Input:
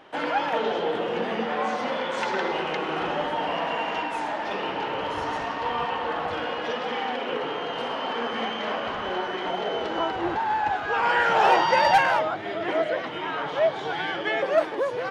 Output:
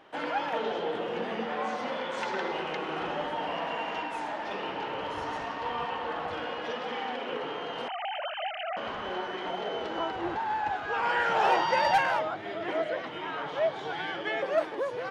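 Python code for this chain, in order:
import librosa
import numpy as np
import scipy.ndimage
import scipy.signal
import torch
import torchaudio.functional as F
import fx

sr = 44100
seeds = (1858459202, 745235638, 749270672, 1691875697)

y = fx.sine_speech(x, sr, at=(7.88, 8.77))
y = fx.dmg_noise_band(y, sr, seeds[0], low_hz=250.0, high_hz=1700.0, level_db=-63.0)
y = y * 10.0 ** (-5.5 / 20.0)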